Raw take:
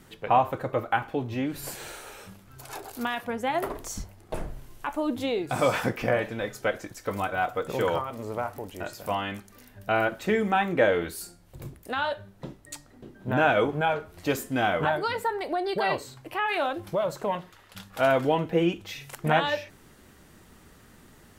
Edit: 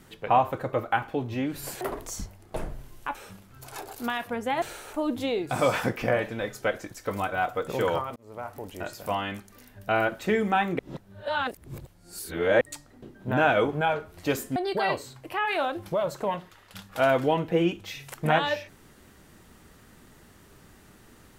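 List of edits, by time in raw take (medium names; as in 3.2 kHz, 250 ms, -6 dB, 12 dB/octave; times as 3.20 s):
1.81–2.12 s: swap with 3.59–4.93 s
8.16–8.69 s: fade in
10.79–12.61 s: reverse
14.56–15.57 s: delete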